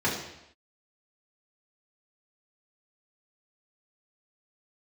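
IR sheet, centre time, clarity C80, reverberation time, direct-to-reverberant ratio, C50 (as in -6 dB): 43 ms, 7.5 dB, not exponential, -7.0 dB, 4.5 dB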